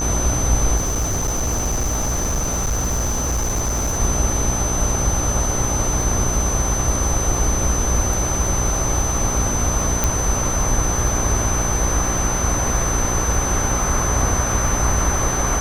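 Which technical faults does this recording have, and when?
buzz 60 Hz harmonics 23 -25 dBFS
crackle 20/s -25 dBFS
tone 6100 Hz -23 dBFS
0.76–3.99 clipped -17 dBFS
10.04 pop

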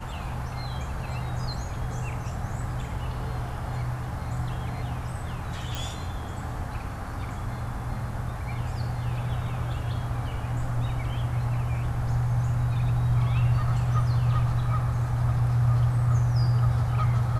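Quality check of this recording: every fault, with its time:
5.75 pop

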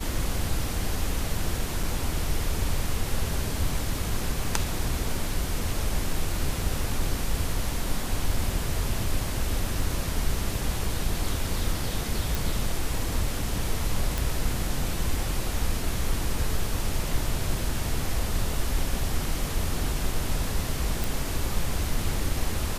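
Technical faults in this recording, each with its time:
1.83 gap 4.6 ms
12.35 pop
14.18 pop
21.04 pop

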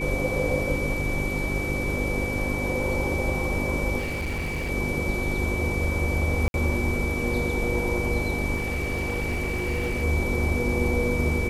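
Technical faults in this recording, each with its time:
hum 50 Hz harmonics 8 -31 dBFS
tone 2300 Hz -30 dBFS
3.98–4.71 clipped -25.5 dBFS
6.48–6.54 gap 61 ms
8.56–10.04 clipped -22.5 dBFS

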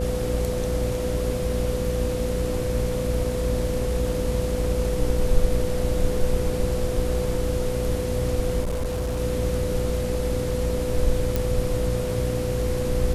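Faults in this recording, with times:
buzz 60 Hz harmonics 10 -28 dBFS
tone 500 Hz -27 dBFS
8.6–9.2 clipped -22.5 dBFS
11.36 pop

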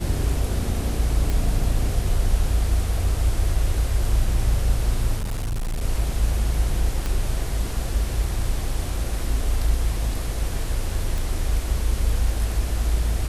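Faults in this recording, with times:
1.3 pop
5.16–5.84 clipped -22.5 dBFS
7.06 pop -13 dBFS
11.18 pop

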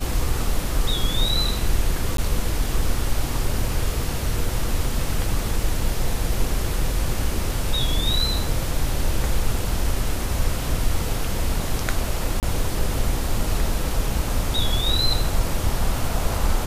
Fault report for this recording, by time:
2.17–2.18 gap 13 ms
12.4–12.43 gap 28 ms

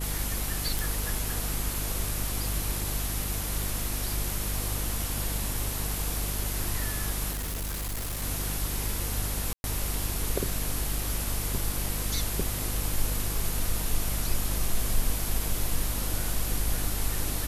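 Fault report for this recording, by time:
crackle 13/s -36 dBFS
hum 50 Hz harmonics 7 -33 dBFS
0.79 pop
7.31–8.23 clipped -29.5 dBFS
9.53–9.64 gap 0.111 s

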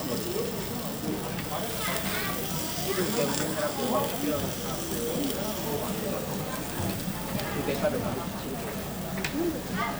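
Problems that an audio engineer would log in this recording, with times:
8.28–9.1 clipped -29.5 dBFS

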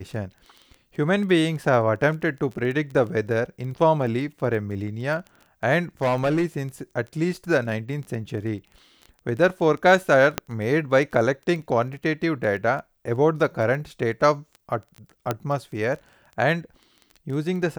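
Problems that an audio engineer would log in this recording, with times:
crackle 11/s -31 dBFS
6.02–6.62 clipped -17 dBFS
10.38 pop -6 dBFS
15.31 pop -10 dBFS

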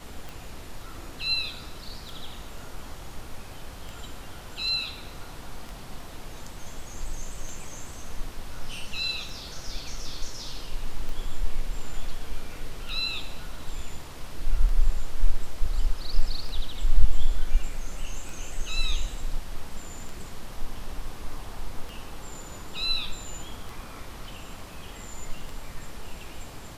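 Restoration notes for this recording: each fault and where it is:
tick 33 1/3 rpm

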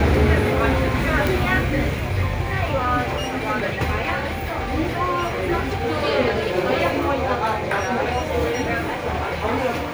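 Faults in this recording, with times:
1.27 pop

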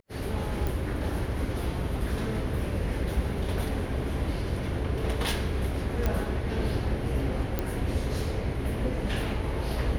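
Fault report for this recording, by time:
0.67 pop
6.06 pop -14 dBFS
7.59 pop -14 dBFS

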